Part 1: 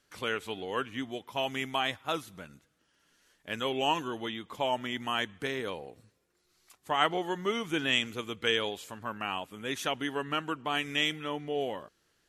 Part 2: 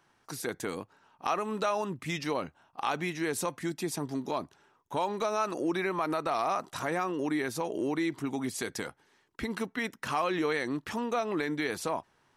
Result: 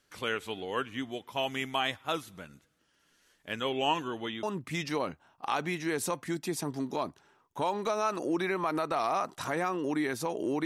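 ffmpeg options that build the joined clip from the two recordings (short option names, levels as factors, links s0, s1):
-filter_complex "[0:a]asettb=1/sr,asplit=3[s0][s1][s2];[s0]atrim=end=3.524[s3];[s1]atrim=start=3.52:end=4.43,asetpts=PTS-STARTPTS,afade=t=in:d=0.004:c=qsin,afade=t=out:st=0.906:d=0.004:c=qsin,highshelf=f=8100:g=-7.5[s4];[s2]atrim=start=4.426[s5];[s3][s4]acrossfade=d=0.004:c1=hsin:c2=qsin[s6];[s6][s5]acrossfade=d=0.004:c1=qsin:c2=hsin,apad=whole_dur=10.65,atrim=end=10.65,atrim=end=4.432[s7];[1:a]atrim=start=1.778:end=8[s8];[s7][s8]acrossfade=d=0.004:c1=hsin:c2=hsin"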